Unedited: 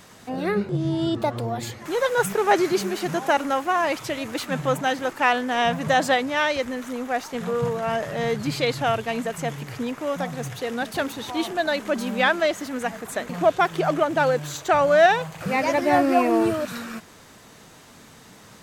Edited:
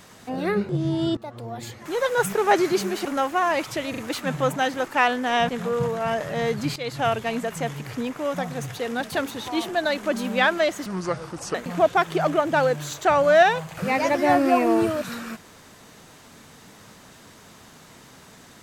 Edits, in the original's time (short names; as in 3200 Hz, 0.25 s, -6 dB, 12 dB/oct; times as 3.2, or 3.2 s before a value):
1.17–2.47 fade in equal-power, from -17.5 dB
3.05–3.38 cut
4.23 stutter 0.04 s, 3 plays
5.74–7.31 cut
8.58–8.88 fade in, from -14.5 dB
12.68–13.18 speed 73%